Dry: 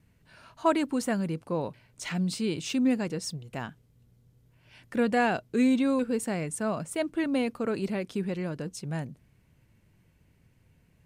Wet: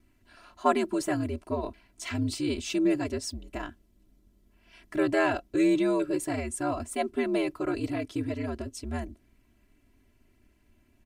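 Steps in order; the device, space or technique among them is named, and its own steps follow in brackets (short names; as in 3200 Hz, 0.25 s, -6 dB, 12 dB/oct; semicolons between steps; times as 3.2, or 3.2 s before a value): ring-modulated robot voice (ring modulator 77 Hz; comb 3 ms, depth 95%)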